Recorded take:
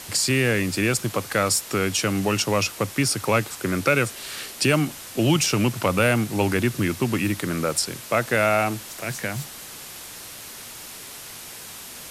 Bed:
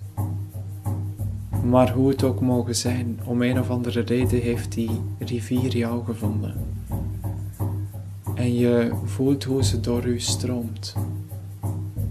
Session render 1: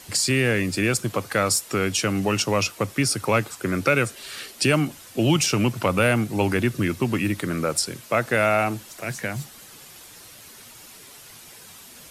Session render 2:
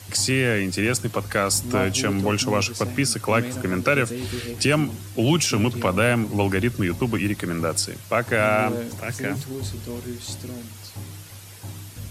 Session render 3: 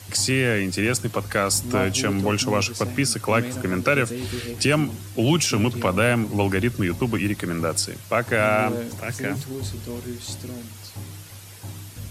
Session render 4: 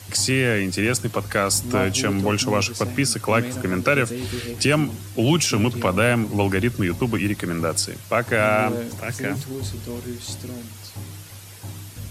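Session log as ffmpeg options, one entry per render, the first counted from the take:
-af "afftdn=nr=8:nf=-39"
-filter_complex "[1:a]volume=-9.5dB[a];[0:a][a]amix=inputs=2:normalize=0"
-af anull
-af "volume=1dB"

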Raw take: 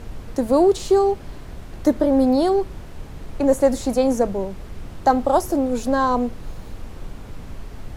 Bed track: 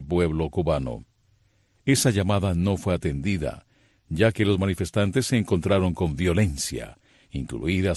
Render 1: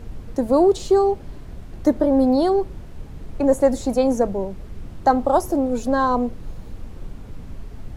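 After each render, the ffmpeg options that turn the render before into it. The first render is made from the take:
-af "afftdn=nr=6:nf=-37"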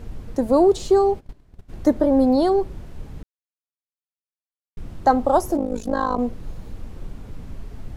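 -filter_complex "[0:a]asplit=3[a][b][c];[a]afade=t=out:st=1.19:d=0.02[d];[b]agate=range=-18dB:threshold=-31dB:ratio=16:release=100:detection=peak,afade=t=in:st=1.19:d=0.02,afade=t=out:st=1.68:d=0.02[e];[c]afade=t=in:st=1.68:d=0.02[f];[d][e][f]amix=inputs=3:normalize=0,asettb=1/sr,asplit=3[g][h][i];[g]atrim=end=5.574[j];[h]atrim=start=5.57:end=6.19,asetpts=PTS-STARTPTS,afade=t=in:d=0.004:c=qsin,afade=t=out:st=0.616:d=0.004:c=qsin,tremolo=f=52:d=0.889[k];[i]atrim=start=6.186[l];[j][k]acrossfade=d=0.004:c1=hsin:c2=qsin[m];[m][l]acrossfade=d=0.004:c1=qsin:c2=hsin,asplit=3[n][o][p];[n]atrim=end=3.23,asetpts=PTS-STARTPTS,afade=t=out:st=3.226:d=0.004:c=hsin[q];[o]atrim=start=3.23:end=4.77,asetpts=PTS-STARTPTS,volume=0[r];[p]atrim=start=4.77,asetpts=PTS-STARTPTS,afade=t=in:d=0.004:c=hsin[s];[q][r][s]concat=n=3:v=0:a=1"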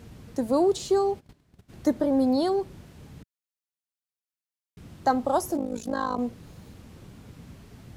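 -af "highpass=120,equalizer=f=560:w=0.35:g=-7"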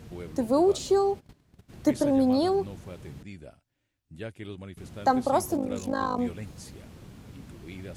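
-filter_complex "[1:a]volume=-18.5dB[a];[0:a][a]amix=inputs=2:normalize=0"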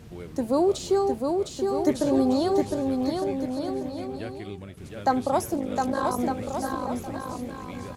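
-af "aecho=1:1:710|1207|1555|1798|1969:0.631|0.398|0.251|0.158|0.1"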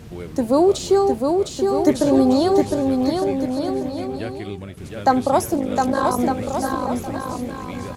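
-af "volume=6.5dB"

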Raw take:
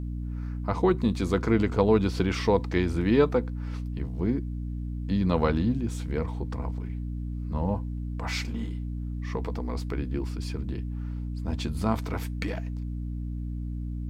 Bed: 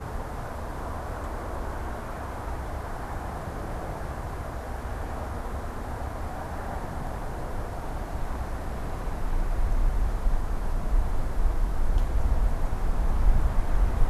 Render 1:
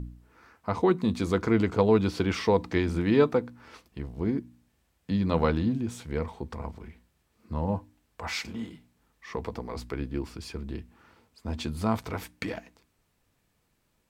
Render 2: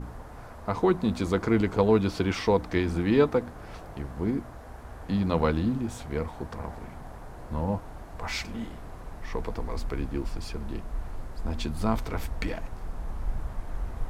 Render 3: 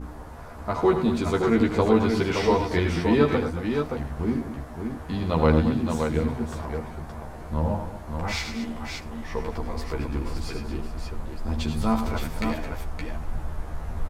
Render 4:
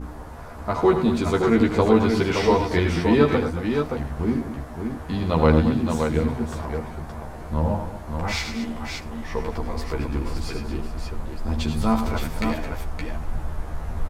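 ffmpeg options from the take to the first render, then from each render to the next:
-af "bandreject=f=60:t=h:w=4,bandreject=f=120:t=h:w=4,bandreject=f=180:t=h:w=4,bandreject=f=240:t=h:w=4,bandreject=f=300:t=h:w=4"
-filter_complex "[1:a]volume=-9.5dB[a];[0:a][a]amix=inputs=2:normalize=0"
-filter_complex "[0:a]asplit=2[a][b];[b]adelay=13,volume=-2.5dB[c];[a][c]amix=inputs=2:normalize=0,aecho=1:1:77|103|223|570:0.282|0.355|0.237|0.531"
-af "volume=2.5dB"

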